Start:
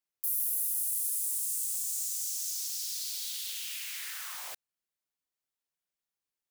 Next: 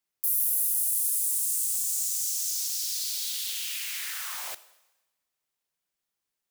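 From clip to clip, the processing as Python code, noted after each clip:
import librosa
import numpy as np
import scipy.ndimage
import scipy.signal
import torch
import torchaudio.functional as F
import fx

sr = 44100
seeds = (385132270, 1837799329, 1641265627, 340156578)

y = fx.rev_double_slope(x, sr, seeds[0], early_s=0.99, late_s=2.6, knee_db=-28, drr_db=14.0)
y = y * librosa.db_to_amplitude(5.0)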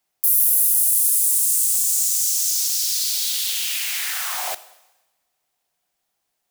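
y = fx.peak_eq(x, sr, hz=730.0, db=10.5, octaves=0.41)
y = y * librosa.db_to_amplitude(9.0)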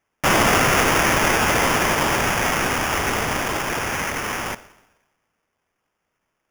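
y = scipy.signal.sosfilt(scipy.signal.butter(4, 960.0, 'highpass', fs=sr, output='sos'), x)
y = fx.sample_hold(y, sr, seeds[1], rate_hz=4100.0, jitter_pct=0)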